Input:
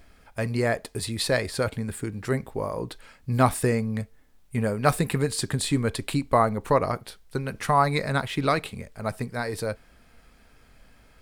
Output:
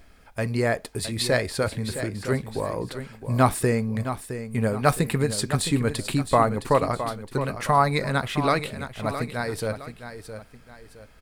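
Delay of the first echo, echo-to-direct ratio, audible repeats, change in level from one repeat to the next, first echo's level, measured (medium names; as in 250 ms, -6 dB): 664 ms, -10.0 dB, 2, -8.5 dB, -10.5 dB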